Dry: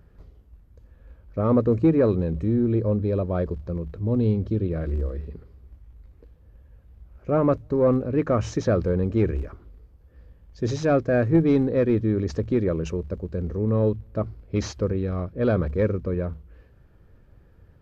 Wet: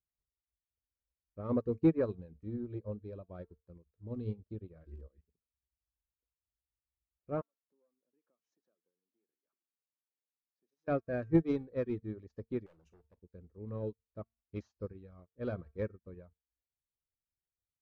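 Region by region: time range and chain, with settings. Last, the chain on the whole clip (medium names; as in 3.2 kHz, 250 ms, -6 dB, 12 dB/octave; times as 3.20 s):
7.41–10.88 s: compression 20:1, threshold -33 dBFS + high-pass 230 Hz 24 dB/octave
12.66–13.21 s: overload inside the chain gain 28 dB + doubling 41 ms -10 dB
whole clip: reverb removal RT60 0.51 s; de-hum 225.7 Hz, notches 24; upward expansion 2.5:1, over -42 dBFS; trim -6 dB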